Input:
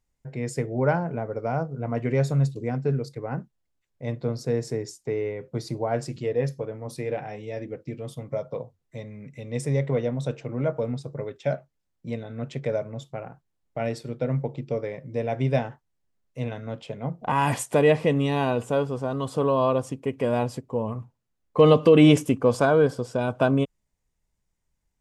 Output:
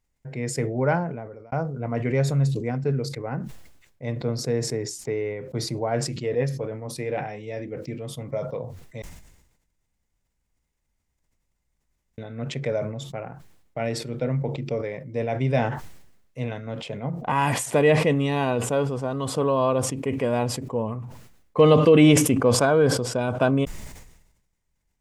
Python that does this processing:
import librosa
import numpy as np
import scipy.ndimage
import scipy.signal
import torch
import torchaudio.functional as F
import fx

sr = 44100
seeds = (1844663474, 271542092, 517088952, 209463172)

y = fx.edit(x, sr, fx.fade_out_span(start_s=0.83, length_s=0.69),
    fx.room_tone_fill(start_s=9.02, length_s=3.16), tone=tone)
y = fx.peak_eq(y, sr, hz=2100.0, db=3.0, octaves=0.55)
y = fx.sustainer(y, sr, db_per_s=60.0)